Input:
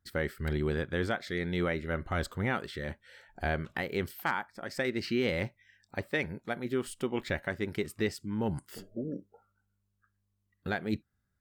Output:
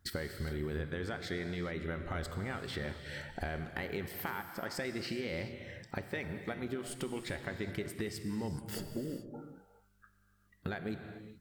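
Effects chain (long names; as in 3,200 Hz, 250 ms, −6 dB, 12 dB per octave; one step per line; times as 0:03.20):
brickwall limiter −23 dBFS, peak gain reduction 6.5 dB
downward compressor 6 to 1, threshold −46 dBFS, peak gain reduction 17 dB
reverb whose tail is shaped and stops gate 450 ms flat, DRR 7 dB
level +9.5 dB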